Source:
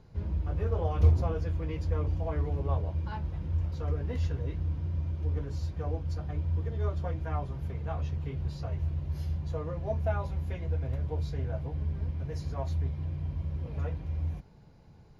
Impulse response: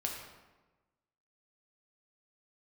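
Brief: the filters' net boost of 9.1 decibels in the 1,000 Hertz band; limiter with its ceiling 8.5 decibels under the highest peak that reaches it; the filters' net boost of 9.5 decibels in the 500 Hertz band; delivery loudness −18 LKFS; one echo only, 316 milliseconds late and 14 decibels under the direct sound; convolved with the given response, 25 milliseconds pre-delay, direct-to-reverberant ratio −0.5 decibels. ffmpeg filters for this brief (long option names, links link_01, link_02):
-filter_complex "[0:a]equalizer=frequency=500:width_type=o:gain=9,equalizer=frequency=1000:width_type=o:gain=8.5,alimiter=limit=-19dB:level=0:latency=1,aecho=1:1:316:0.2,asplit=2[link_01][link_02];[1:a]atrim=start_sample=2205,adelay=25[link_03];[link_02][link_03]afir=irnorm=-1:irlink=0,volume=-1.5dB[link_04];[link_01][link_04]amix=inputs=2:normalize=0,volume=9dB"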